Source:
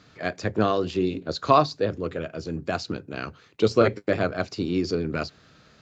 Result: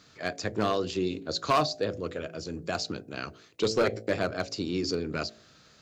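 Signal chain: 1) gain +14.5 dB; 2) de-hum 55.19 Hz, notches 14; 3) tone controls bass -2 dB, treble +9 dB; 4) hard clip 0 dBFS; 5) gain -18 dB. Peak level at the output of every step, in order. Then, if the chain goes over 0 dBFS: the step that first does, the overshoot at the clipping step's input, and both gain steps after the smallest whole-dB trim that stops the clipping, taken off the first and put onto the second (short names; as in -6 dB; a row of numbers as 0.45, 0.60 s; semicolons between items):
+10.5, +9.5, +9.5, 0.0, -18.0 dBFS; step 1, 9.5 dB; step 1 +4.5 dB, step 5 -8 dB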